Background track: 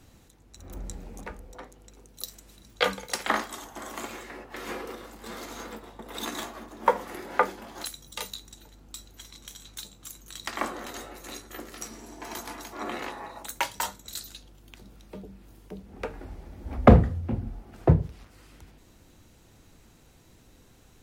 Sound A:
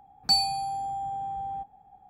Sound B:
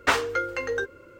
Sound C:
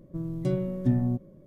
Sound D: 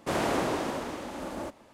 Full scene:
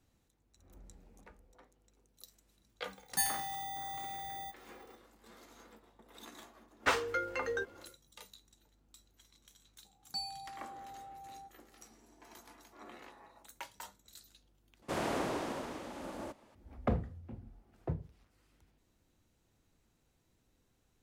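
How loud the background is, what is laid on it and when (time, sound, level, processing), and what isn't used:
background track -18 dB
2.88 s: add A -9.5 dB + bit-reversed sample order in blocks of 16 samples
6.79 s: add B -8 dB, fades 0.10 s
9.85 s: add A -17 dB
14.82 s: replace with D -7 dB
not used: C

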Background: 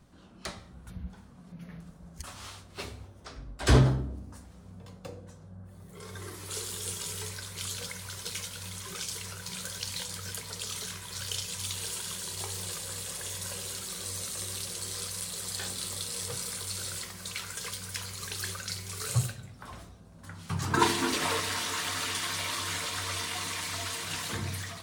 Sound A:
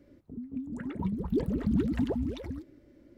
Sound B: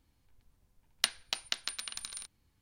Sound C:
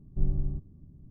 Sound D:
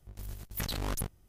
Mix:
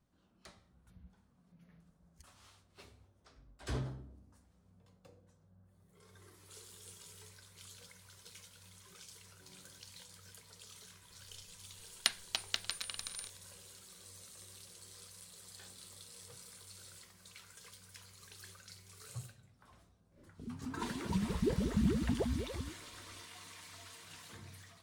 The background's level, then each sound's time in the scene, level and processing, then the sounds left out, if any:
background -18 dB
9.23 s: add C -13.5 dB + high-pass 540 Hz
11.02 s: add B -2 dB + delay 297 ms -18.5 dB
20.10 s: add A -2 dB, fades 0.10 s + peaking EQ 280 Hz -9 dB 0.34 oct
not used: D

